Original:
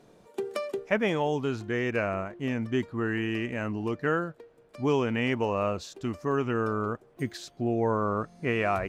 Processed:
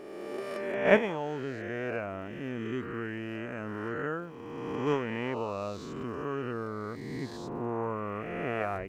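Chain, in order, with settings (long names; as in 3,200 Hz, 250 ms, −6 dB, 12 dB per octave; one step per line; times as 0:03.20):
peak hold with a rise ahead of every peak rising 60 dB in 2.06 s
high-shelf EQ 2,100 Hz −6.5 dB
surface crackle 230 per second −51 dBFS
noise gate −20 dBFS, range −13 dB
level +5 dB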